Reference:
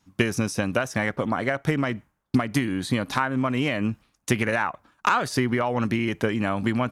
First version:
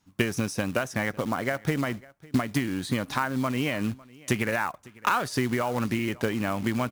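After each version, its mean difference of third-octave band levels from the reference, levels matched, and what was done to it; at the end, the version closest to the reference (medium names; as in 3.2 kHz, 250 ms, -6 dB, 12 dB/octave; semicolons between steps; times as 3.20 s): 4.0 dB: short-mantissa float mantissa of 2-bit; delay 552 ms -23 dB; trim -3 dB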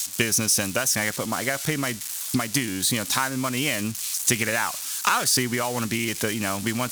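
9.5 dB: zero-crossing glitches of -25 dBFS; peaking EQ 7.3 kHz +13.5 dB 2.6 oct; trim -3.5 dB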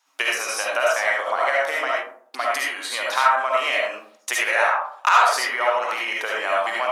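13.0 dB: high-pass 650 Hz 24 dB/octave; algorithmic reverb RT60 0.59 s, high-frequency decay 0.35×, pre-delay 30 ms, DRR -4 dB; trim +2.5 dB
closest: first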